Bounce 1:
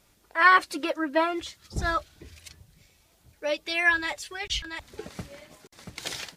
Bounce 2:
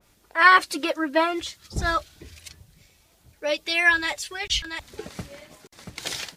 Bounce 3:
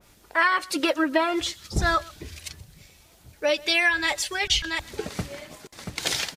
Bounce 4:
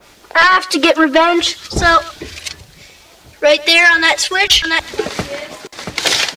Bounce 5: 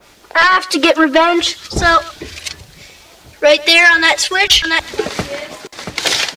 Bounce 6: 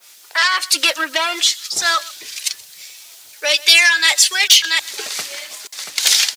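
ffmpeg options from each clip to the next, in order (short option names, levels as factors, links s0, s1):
-af "adynamicequalizer=threshold=0.0178:dfrequency=2400:dqfactor=0.7:tfrequency=2400:tqfactor=0.7:attack=5:release=100:ratio=0.375:range=2:mode=boostabove:tftype=highshelf,volume=1.33"
-af "acompressor=threshold=0.0708:ratio=8,aecho=1:1:127:0.075,volume=1.78"
-filter_complex "[0:a]acrossover=split=280|6800[s0][s1][s2];[s1]aeval=exprs='0.398*sin(PI/2*2*val(0)/0.398)':c=same[s3];[s0][s3][s2]amix=inputs=3:normalize=0,acrusher=bits=10:mix=0:aa=0.000001,volume=1.68"
-af "dynaudnorm=f=110:g=13:m=3.76,volume=0.891"
-af "aderivative,apsyclip=2.66,volume=0.841"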